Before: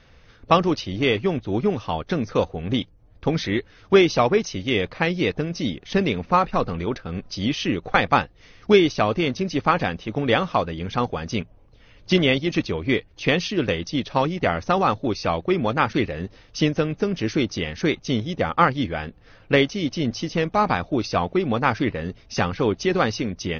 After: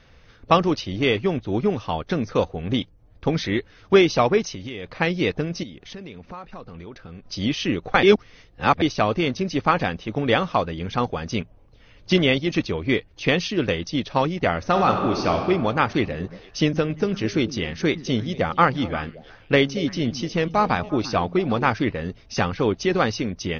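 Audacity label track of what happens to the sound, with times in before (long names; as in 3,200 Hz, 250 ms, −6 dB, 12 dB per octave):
4.540000	4.960000	downward compressor 8 to 1, threshold −29 dBFS
5.630000	7.270000	downward compressor 4 to 1, threshold −37 dBFS
8.030000	8.820000	reverse
14.580000	15.350000	thrown reverb, RT60 1.9 s, DRR 3 dB
15.920000	21.720000	echo through a band-pass that steps 115 ms, band-pass from 180 Hz, each repeat 1.4 octaves, level −10 dB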